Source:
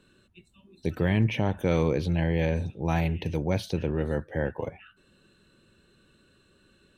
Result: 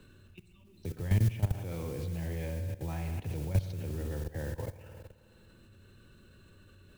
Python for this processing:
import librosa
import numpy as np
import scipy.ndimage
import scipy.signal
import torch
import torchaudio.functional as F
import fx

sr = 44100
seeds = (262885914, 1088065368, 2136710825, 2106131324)

y = fx.rev_spring(x, sr, rt60_s=1.5, pass_ms=(53,), chirp_ms=50, drr_db=6.0)
y = fx.mod_noise(y, sr, seeds[0], snr_db=15)
y = fx.peak_eq(y, sr, hz=98.0, db=12.5, octaves=0.43)
y = fx.level_steps(y, sr, step_db=16)
y = fx.low_shelf(y, sr, hz=64.0, db=11.0)
y = fx.band_squash(y, sr, depth_pct=40)
y = y * 10.0 ** (-6.0 / 20.0)